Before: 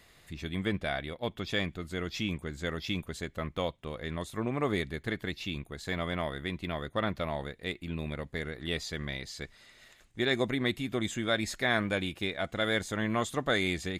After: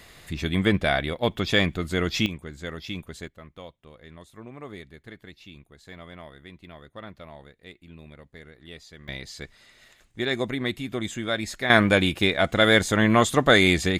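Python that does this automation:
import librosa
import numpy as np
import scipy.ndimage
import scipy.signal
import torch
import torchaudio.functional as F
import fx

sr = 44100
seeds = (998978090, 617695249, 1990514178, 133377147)

y = fx.gain(x, sr, db=fx.steps((0.0, 10.0), (2.26, -0.5), (3.28, -10.0), (9.08, 2.0), (11.7, 11.5)))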